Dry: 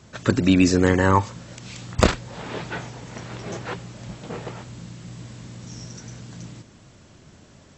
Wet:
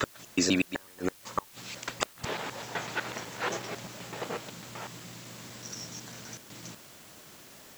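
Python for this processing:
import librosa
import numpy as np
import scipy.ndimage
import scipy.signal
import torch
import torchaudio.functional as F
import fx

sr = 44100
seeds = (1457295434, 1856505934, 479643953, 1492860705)

p1 = fx.block_reorder(x, sr, ms=125.0, group=3)
p2 = fx.highpass(p1, sr, hz=590.0, slope=6)
p3 = fx.rider(p2, sr, range_db=4, speed_s=0.5)
p4 = p2 + (p3 * 10.0 ** (0.5 / 20.0))
p5 = fx.gate_flip(p4, sr, shuts_db=-6.0, range_db=-35)
p6 = fx.quant_dither(p5, sr, seeds[0], bits=8, dither='triangular')
y = p6 * 10.0 ** (-6.5 / 20.0)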